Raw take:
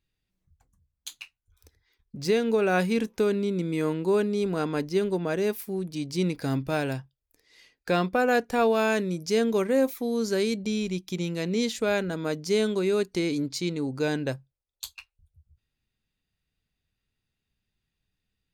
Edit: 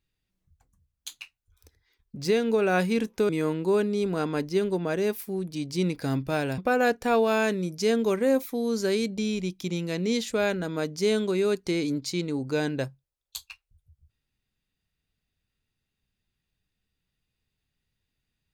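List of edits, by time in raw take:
3.29–3.69 s: delete
6.98–8.06 s: delete

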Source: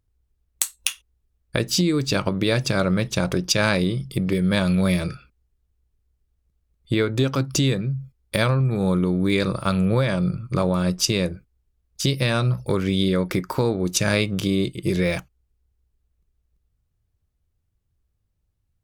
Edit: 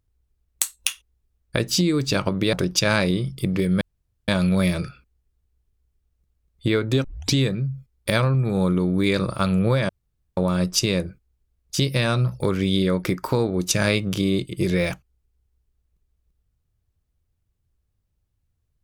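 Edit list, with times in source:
2.53–3.26 s: delete
4.54 s: insert room tone 0.47 s
7.30 s: tape start 0.31 s
10.15–10.63 s: room tone

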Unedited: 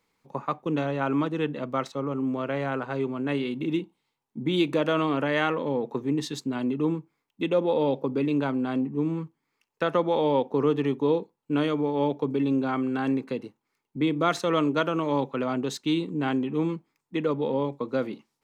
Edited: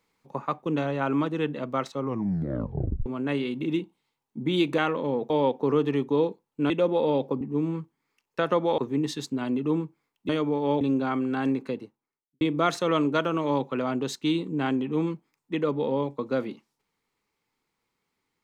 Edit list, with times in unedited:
2.01 s: tape stop 1.05 s
4.78–5.40 s: delete
5.92–7.43 s: swap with 10.21–11.61 s
8.14–8.84 s: delete
12.13–12.43 s: delete
13.24–14.03 s: studio fade out

